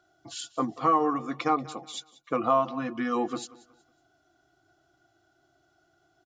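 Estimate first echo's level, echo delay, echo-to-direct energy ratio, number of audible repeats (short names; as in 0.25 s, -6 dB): -20.0 dB, 0.185 s, -19.5 dB, 2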